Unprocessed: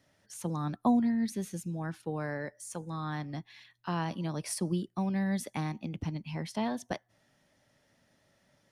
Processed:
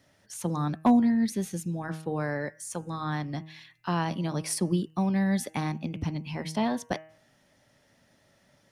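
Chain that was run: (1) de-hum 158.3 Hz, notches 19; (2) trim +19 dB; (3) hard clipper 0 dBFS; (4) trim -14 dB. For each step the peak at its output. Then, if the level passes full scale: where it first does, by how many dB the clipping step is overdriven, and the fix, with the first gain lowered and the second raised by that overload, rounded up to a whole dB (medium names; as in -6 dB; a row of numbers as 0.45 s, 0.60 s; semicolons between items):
-16.0 dBFS, +3.0 dBFS, 0.0 dBFS, -14.0 dBFS; step 2, 3.0 dB; step 2 +16 dB, step 4 -11 dB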